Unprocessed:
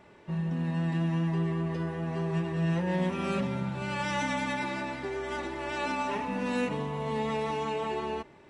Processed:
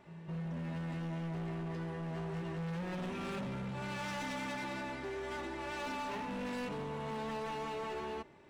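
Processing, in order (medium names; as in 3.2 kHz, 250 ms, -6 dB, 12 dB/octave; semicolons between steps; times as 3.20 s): reverse echo 215 ms -14 dB; overload inside the chain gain 32 dB; trim -5 dB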